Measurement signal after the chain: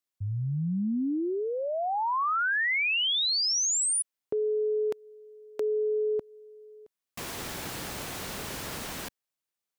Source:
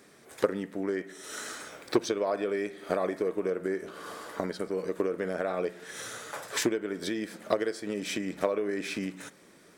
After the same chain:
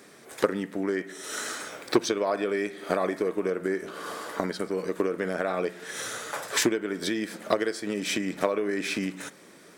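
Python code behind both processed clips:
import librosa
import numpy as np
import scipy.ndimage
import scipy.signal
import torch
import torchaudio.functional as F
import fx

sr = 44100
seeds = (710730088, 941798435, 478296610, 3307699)

y = fx.highpass(x, sr, hz=130.0, slope=6)
y = fx.dynamic_eq(y, sr, hz=520.0, q=1.3, threshold_db=-40.0, ratio=4.0, max_db=-4)
y = F.gain(torch.from_numpy(y), 5.5).numpy()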